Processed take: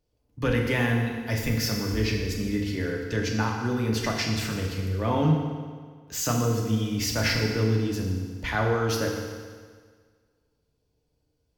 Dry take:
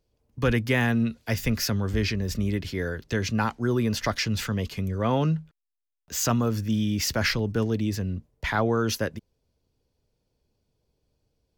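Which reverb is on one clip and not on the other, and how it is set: FDN reverb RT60 1.7 s, low-frequency decay 0.95×, high-frequency decay 0.9×, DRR -0.5 dB; gain -3.5 dB

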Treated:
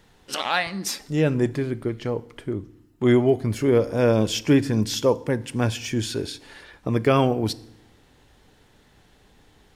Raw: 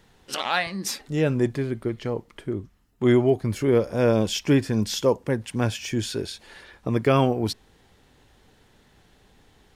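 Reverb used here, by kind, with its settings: FDN reverb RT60 0.8 s, low-frequency decay 1.35×, high-frequency decay 0.85×, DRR 16.5 dB; gain +1 dB

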